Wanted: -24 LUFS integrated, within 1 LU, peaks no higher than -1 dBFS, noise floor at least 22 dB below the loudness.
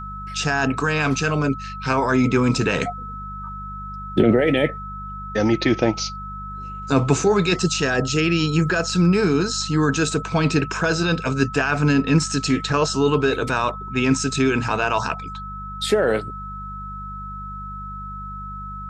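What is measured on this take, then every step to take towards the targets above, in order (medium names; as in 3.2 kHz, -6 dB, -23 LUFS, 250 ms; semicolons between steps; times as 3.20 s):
hum 50 Hz; highest harmonic 200 Hz; hum level -33 dBFS; steady tone 1.3 kHz; tone level -32 dBFS; loudness -20.5 LUFS; peak level -3.0 dBFS; loudness target -24.0 LUFS
-> de-hum 50 Hz, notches 4; band-stop 1.3 kHz, Q 30; trim -3.5 dB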